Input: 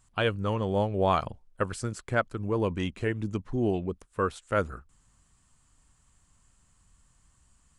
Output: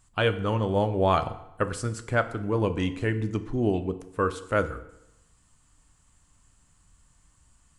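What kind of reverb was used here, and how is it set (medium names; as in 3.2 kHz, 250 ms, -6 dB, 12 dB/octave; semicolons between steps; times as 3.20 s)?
FDN reverb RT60 0.87 s, low-frequency decay 1×, high-frequency decay 0.8×, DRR 9.5 dB; trim +2 dB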